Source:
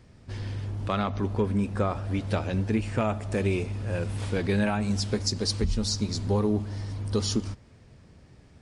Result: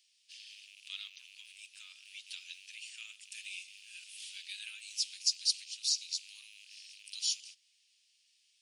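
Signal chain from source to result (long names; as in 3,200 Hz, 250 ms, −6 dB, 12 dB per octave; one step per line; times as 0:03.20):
loose part that buzzes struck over −31 dBFS, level −37 dBFS
Chebyshev high-pass filter 2,800 Hz, order 4
notch filter 7,600 Hz, Q 25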